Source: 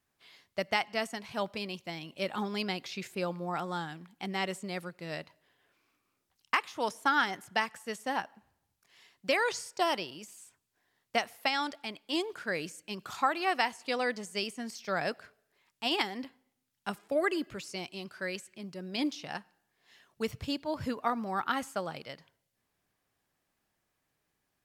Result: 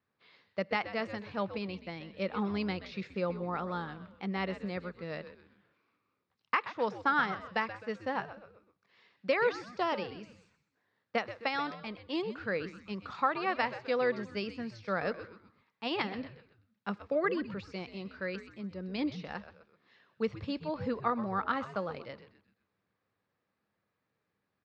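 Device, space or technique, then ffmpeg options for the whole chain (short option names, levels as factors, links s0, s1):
frequency-shifting delay pedal into a guitar cabinet: -filter_complex "[0:a]asplit=5[s0][s1][s2][s3][s4];[s1]adelay=128,afreqshift=-120,volume=0.224[s5];[s2]adelay=256,afreqshift=-240,volume=0.0871[s6];[s3]adelay=384,afreqshift=-360,volume=0.0339[s7];[s4]adelay=512,afreqshift=-480,volume=0.0133[s8];[s0][s5][s6][s7][s8]amix=inputs=5:normalize=0,highpass=87,equalizer=f=100:t=q:w=4:g=6,equalizer=f=200:t=q:w=4:g=6,equalizer=f=490:t=q:w=4:g=7,equalizer=f=710:t=q:w=4:g=-3,equalizer=f=1200:t=q:w=4:g=4,equalizer=f=3100:t=q:w=4:g=-6,lowpass=f=4200:w=0.5412,lowpass=f=4200:w=1.3066,volume=0.75"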